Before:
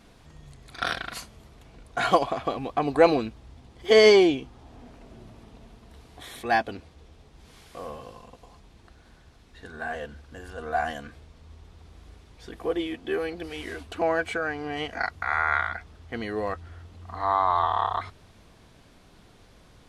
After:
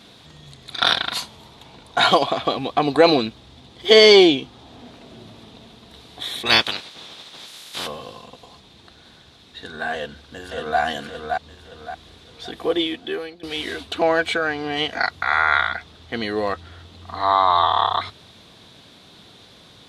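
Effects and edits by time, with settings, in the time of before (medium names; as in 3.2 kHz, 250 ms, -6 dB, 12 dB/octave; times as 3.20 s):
0.80–2.09 s: peaking EQ 910 Hz +10 dB 0.32 oct
6.45–7.86 s: spectral peaks clipped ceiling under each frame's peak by 26 dB
9.94–10.80 s: echo throw 570 ms, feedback 35%, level -4 dB
12.82–13.43 s: fade out, to -20 dB
whole clip: high-pass 110 Hz 12 dB/octave; peaking EQ 3.7 kHz +13 dB 0.57 oct; loudness maximiser +7 dB; trim -1 dB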